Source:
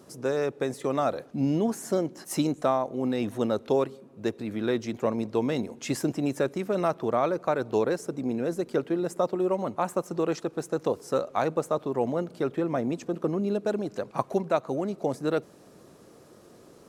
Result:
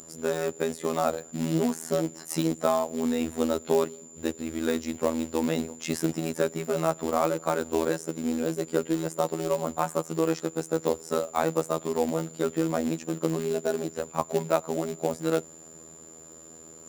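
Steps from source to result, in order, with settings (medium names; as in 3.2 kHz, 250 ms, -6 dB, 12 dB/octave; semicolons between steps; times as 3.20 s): short-mantissa float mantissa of 2-bit; whistle 7.1 kHz -40 dBFS; robot voice 81 Hz; trim +2.5 dB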